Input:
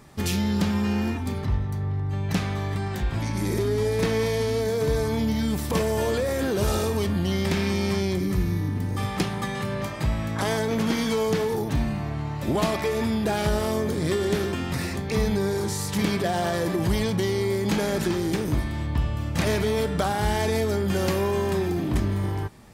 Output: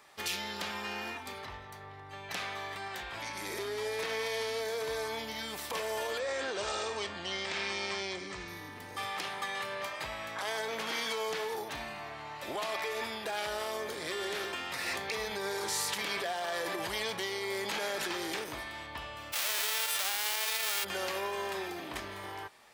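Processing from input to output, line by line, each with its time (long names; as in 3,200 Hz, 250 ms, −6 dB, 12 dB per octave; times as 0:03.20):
0:06.19–0:08.48: Butterworth low-pass 8,600 Hz 96 dB per octave
0:14.86–0:18.44: envelope flattener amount 50%
0:19.32–0:20.83: spectral envelope flattened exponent 0.1
whole clip: three-way crossover with the lows and the highs turned down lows −23 dB, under 460 Hz, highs −12 dB, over 3,800 Hz; brickwall limiter −23.5 dBFS; high-shelf EQ 2,800 Hz +11.5 dB; level −5 dB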